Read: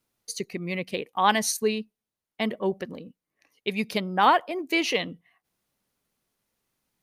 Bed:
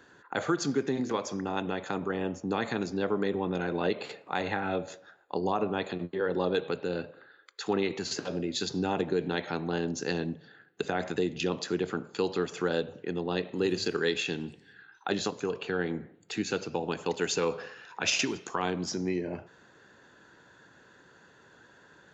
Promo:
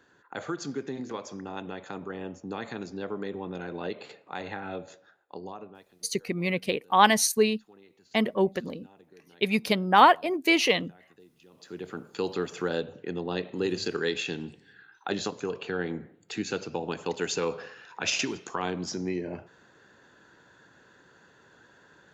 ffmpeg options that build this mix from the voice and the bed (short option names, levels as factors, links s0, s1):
-filter_complex "[0:a]adelay=5750,volume=1.33[s0];[1:a]volume=11.2,afade=t=out:st=5.05:d=0.81:silence=0.0841395,afade=t=in:st=11.52:d=0.75:silence=0.0473151[s1];[s0][s1]amix=inputs=2:normalize=0"